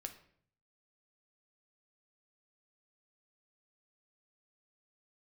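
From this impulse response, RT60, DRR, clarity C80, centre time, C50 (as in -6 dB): 0.60 s, 5.5 dB, 15.0 dB, 11 ms, 11.5 dB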